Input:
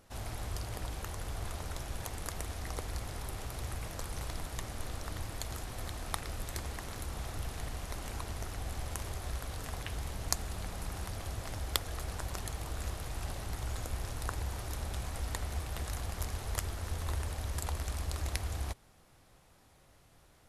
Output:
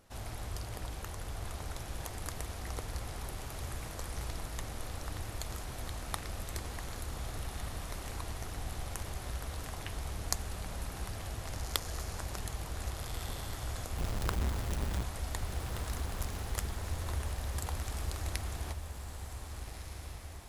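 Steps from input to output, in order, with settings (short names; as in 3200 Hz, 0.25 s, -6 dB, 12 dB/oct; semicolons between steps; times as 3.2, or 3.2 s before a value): 13.97–15.03 half-waves squared off; on a send: diffused feedback echo 1.574 s, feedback 50%, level -7 dB; on the sum: gain -1.5 dB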